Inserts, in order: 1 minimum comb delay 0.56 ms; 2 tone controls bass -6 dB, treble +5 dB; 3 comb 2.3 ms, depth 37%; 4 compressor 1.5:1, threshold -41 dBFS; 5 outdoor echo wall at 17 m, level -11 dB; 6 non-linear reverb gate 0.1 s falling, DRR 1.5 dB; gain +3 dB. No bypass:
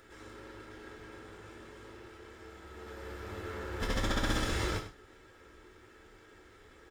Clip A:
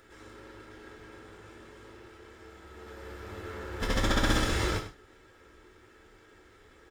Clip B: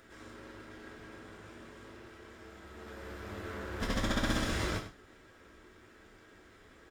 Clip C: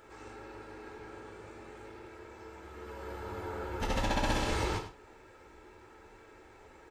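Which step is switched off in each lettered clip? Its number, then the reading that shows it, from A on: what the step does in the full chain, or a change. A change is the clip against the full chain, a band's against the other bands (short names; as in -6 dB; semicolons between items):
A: 4, loudness change +6.5 LU; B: 3, momentary loudness spread change -5 LU; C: 1, 1 kHz band +5.0 dB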